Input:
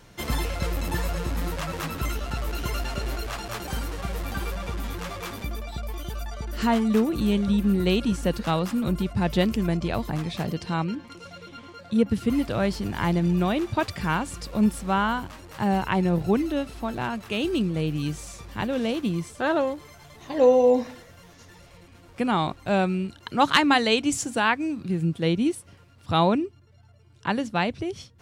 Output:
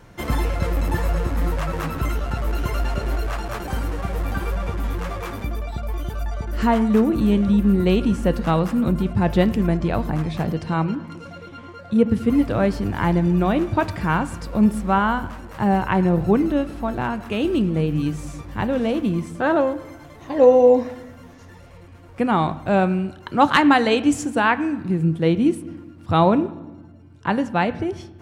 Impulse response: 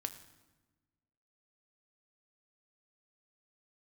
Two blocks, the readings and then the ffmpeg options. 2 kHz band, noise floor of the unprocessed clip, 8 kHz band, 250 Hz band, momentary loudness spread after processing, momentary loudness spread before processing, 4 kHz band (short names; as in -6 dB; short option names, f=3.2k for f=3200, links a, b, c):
+3.0 dB, -52 dBFS, n/a, +5.0 dB, 12 LU, 12 LU, -2.5 dB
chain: -filter_complex "[0:a]asplit=2[a][b];[1:a]atrim=start_sample=2205,lowpass=2.4k[c];[b][c]afir=irnorm=-1:irlink=0,volume=3.5dB[d];[a][d]amix=inputs=2:normalize=0,volume=-2dB"